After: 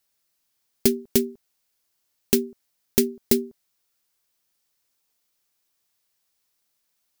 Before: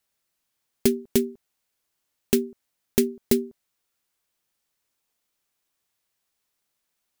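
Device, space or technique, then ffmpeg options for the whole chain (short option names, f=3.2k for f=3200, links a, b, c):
presence and air boost: -af "equalizer=f=5k:t=o:w=0.77:g=4,highshelf=f=10k:g=6.5"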